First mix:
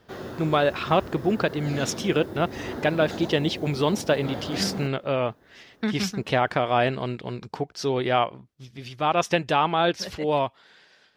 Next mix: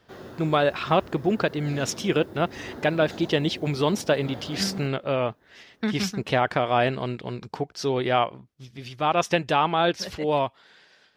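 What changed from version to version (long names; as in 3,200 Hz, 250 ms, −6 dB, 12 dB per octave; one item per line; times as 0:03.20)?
background −5.5 dB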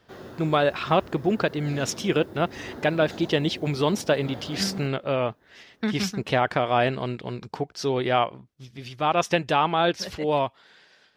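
nothing changed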